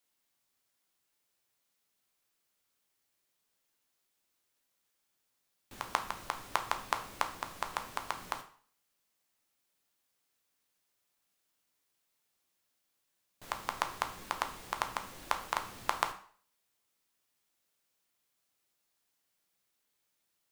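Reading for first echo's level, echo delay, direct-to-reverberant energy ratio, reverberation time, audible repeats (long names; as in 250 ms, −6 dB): no echo audible, no echo audible, 6.0 dB, 0.50 s, no echo audible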